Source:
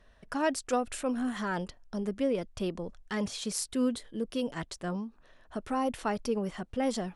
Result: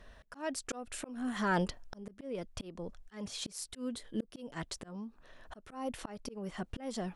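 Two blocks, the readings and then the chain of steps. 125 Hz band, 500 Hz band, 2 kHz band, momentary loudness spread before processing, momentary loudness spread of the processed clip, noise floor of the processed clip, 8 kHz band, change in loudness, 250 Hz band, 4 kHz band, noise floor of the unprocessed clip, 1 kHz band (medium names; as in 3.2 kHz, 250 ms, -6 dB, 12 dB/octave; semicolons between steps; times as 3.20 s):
-2.5 dB, -9.0 dB, -3.0 dB, 7 LU, 14 LU, -63 dBFS, -5.0 dB, -6.5 dB, -7.5 dB, -4.0 dB, -61 dBFS, -6.0 dB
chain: slow attack 663 ms; trim +5.5 dB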